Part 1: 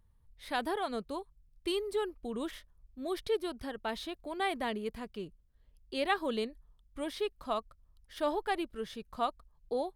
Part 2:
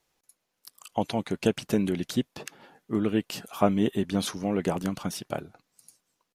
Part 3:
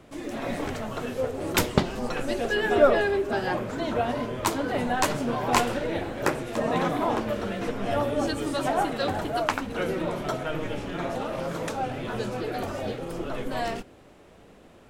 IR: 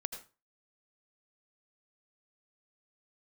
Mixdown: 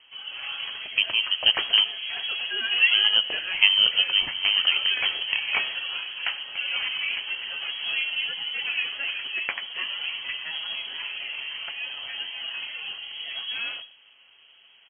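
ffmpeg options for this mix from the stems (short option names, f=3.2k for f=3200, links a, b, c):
-filter_complex "[0:a]lowpass=1k,adelay=1550,volume=-6dB[a];[1:a]volume=1.5dB,asplit=3[b][c][d];[b]atrim=end=1.84,asetpts=PTS-STARTPTS,afade=t=out:st=1.836:d=0.004:c=hsin[e];[c]atrim=start=1.84:end=2.79,asetpts=PTS-STARTPTS,volume=0[f];[d]atrim=start=2.79,asetpts=PTS-STARTPTS,afade=t=in:d=0.004:c=hsin[g];[e][f][g]concat=n=3:v=0:a=1,asplit=2[h][i];[i]volume=-9.5dB[j];[2:a]aecho=1:1:6.9:0.3,volume=-6dB,asplit=2[k][l];[l]volume=-10dB[m];[3:a]atrim=start_sample=2205[n];[j][m]amix=inputs=2:normalize=0[o];[o][n]afir=irnorm=-1:irlink=0[p];[a][h][k][p]amix=inputs=4:normalize=0,lowpass=f=2.8k:t=q:w=0.5098,lowpass=f=2.8k:t=q:w=0.6013,lowpass=f=2.8k:t=q:w=0.9,lowpass=f=2.8k:t=q:w=2.563,afreqshift=-3300"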